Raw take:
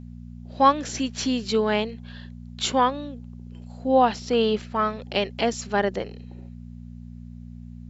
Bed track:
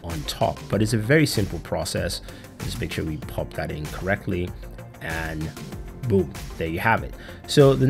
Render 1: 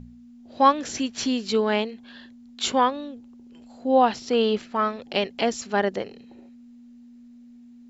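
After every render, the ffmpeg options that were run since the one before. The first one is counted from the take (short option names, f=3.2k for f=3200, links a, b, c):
-af "bandreject=f=60:t=h:w=4,bandreject=f=120:t=h:w=4,bandreject=f=180:t=h:w=4"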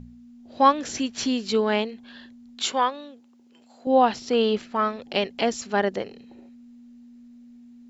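-filter_complex "[0:a]asettb=1/sr,asplit=3[a][b][c];[a]atrim=end=2.624[d];[b]atrim=start=2.62:end=3.87,asetpts=PTS-STARTPTS,afade=t=in:d=0.004:c=qsin,afade=t=out:st=1.246:d=0.004:c=qsin,highpass=f=630:p=1[e];[c]atrim=start=3.866[f];[d][e]acrossfade=d=0.004:c1=hsin:c2=qsin[g];[g][f]acrossfade=d=0.004:c1=qsin:c2=hsin"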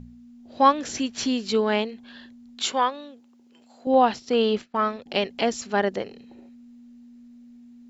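-filter_complex "[0:a]asettb=1/sr,asplit=3[a][b][c];[a]atrim=end=3.944[d];[b]atrim=start=3.94:end=5.06,asetpts=PTS-STARTPTS,afade=t=in:d=0.004:c=qsin,afade=t=out:st=1.116:d=0.004:c=qsin,agate=range=-33dB:threshold=-35dB:ratio=3:release=100:detection=peak[e];[c]atrim=start=5.056[f];[d][e]acrossfade=d=0.004:c1=hsin:c2=qsin[g];[g][f]acrossfade=d=0.004:c1=qsin:c2=hsin"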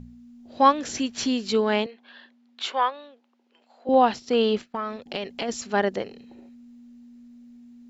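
-filter_complex "[0:a]asettb=1/sr,asplit=3[a][b][c];[a]atrim=end=1.864[d];[b]atrim=start=1.86:end=3.89,asetpts=PTS-STARTPTS,afade=t=in:d=0.004:c=qsin,afade=t=out:st=2.026:d=0.004:c=qsin,highpass=490,lowpass=3.5k[e];[c]atrim=start=3.886[f];[d][e]acrossfade=d=0.004:c1=hsin:c2=qsin[g];[g][f]acrossfade=d=0.004:c1=qsin:c2=hsin,asplit=3[h][i][j];[h]afade=t=out:st=4.62:d=0.02[k];[i]acompressor=threshold=-25dB:ratio=6:attack=3.2:release=140:knee=1:detection=peak,afade=t=in:st=4.62:d=0.02,afade=t=out:st=5.48:d=0.02[l];[j]afade=t=in:st=5.48:d=0.02[m];[k][l][m]amix=inputs=3:normalize=0"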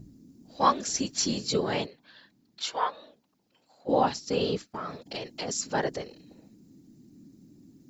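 -af "afftfilt=real='hypot(re,im)*cos(2*PI*random(0))':imag='hypot(re,im)*sin(2*PI*random(1))':win_size=512:overlap=0.75,aexciter=amount=4.2:drive=3.5:freq=4.3k"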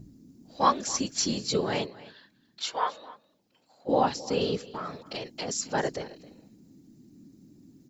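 -af "aecho=1:1:266:0.112"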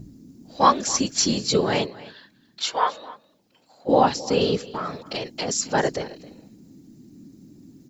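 -af "volume=6.5dB,alimiter=limit=-3dB:level=0:latency=1"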